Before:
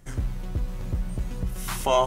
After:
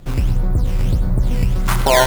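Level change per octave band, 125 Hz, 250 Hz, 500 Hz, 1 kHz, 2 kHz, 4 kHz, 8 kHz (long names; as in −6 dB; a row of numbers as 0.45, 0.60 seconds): +12.5, +11.5, +7.5, +7.0, +16.0, +10.5, +10.0 decibels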